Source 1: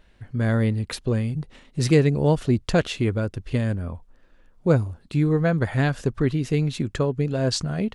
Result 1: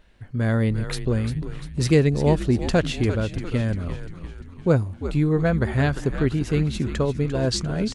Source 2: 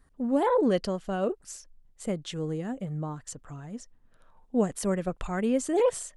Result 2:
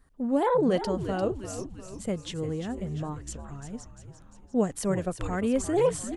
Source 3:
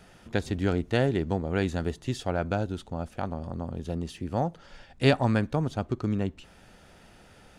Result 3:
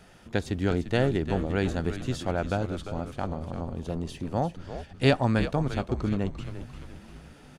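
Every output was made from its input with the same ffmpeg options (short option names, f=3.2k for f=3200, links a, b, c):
-filter_complex "[0:a]asplit=7[a][b][c][d][e][f][g];[b]adelay=347,afreqshift=-89,volume=-10dB[h];[c]adelay=694,afreqshift=-178,volume=-15.5dB[i];[d]adelay=1041,afreqshift=-267,volume=-21dB[j];[e]adelay=1388,afreqshift=-356,volume=-26.5dB[k];[f]adelay=1735,afreqshift=-445,volume=-32.1dB[l];[g]adelay=2082,afreqshift=-534,volume=-37.6dB[m];[a][h][i][j][k][l][m]amix=inputs=7:normalize=0"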